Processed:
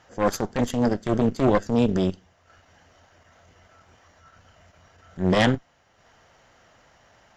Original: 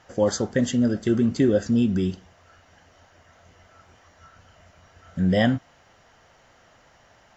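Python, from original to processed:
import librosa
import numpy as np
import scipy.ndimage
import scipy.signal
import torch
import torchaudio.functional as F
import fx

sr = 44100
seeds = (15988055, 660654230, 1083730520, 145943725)

y = fx.cheby_harmonics(x, sr, harmonics=(4,), levels_db=(-8,), full_scale_db=-9.0)
y = fx.transient(y, sr, attack_db=-10, sustain_db=-6)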